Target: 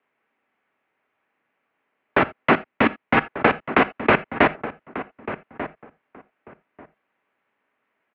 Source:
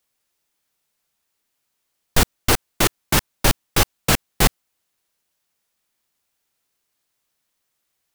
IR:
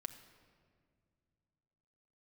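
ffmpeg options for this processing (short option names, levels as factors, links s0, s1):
-filter_complex "[0:a]asettb=1/sr,asplit=3[s0][s1][s2];[s0]atrim=end=2.534[s3];[s1]atrim=start=2.53:end=3.17,asetpts=PTS-STARTPTS,afade=t=in:d=0.004:c=qsin,afade=t=out:st=0.636:d=0.004:c=qsin,equalizer=f=1000:t=o:w=3:g=-5[s4];[s2]atrim=start=3.166[s5];[s3][s4]acrossfade=d=0.004:c1=hsin:c2=qsin[s6];[s6][s5]acrossfade=d=0.004:c1=qsin:c2=hsin,acompressor=threshold=0.158:ratio=6,asplit=2[s7][s8];[s8]adelay=1191,lowpass=f=1600:p=1,volume=0.251,asplit=2[s9][s10];[s10]adelay=1191,lowpass=f=1600:p=1,volume=0.18[s11];[s7][s9][s11]amix=inputs=3:normalize=0,asplit=2[s12][s13];[1:a]atrim=start_sample=2205,atrim=end_sample=3969[s14];[s13][s14]afir=irnorm=-1:irlink=0,volume=3.16[s15];[s12][s15]amix=inputs=2:normalize=0,highpass=f=290:t=q:w=0.5412,highpass=f=290:t=q:w=1.307,lowpass=f=2500:t=q:w=0.5176,lowpass=f=2500:t=q:w=0.7071,lowpass=f=2500:t=q:w=1.932,afreqshift=-98"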